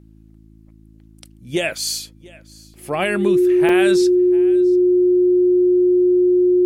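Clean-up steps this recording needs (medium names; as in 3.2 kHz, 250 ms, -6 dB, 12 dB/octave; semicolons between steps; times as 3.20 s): de-hum 54 Hz, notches 6; band-stop 360 Hz, Q 30; interpolate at 2.74/3.69 s, 2.8 ms; inverse comb 691 ms -23 dB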